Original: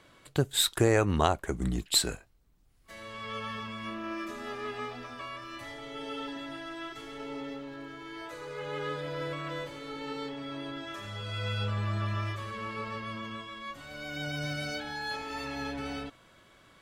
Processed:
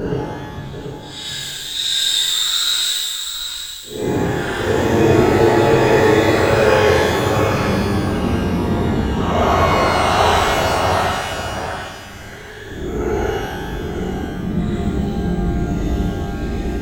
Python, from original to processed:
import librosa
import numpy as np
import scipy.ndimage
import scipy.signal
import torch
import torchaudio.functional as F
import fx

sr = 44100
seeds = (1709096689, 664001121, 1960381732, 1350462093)

y = fx.local_reverse(x, sr, ms=48.0)
y = scipy.signal.sosfilt(scipy.signal.butter(4, 6100.0, 'lowpass', fs=sr, output='sos'), y)
y = fx.paulstretch(y, sr, seeds[0], factor=12.0, window_s=0.05, from_s=0.43)
y = y + 10.0 ** (-8.5 / 20.0) * np.pad(y, (int(734 * sr / 1000.0), 0))[:len(y)]
y = fx.rev_shimmer(y, sr, seeds[1], rt60_s=1.3, semitones=12, shimmer_db=-8, drr_db=-9.0)
y = y * 10.0 ** (-1.0 / 20.0)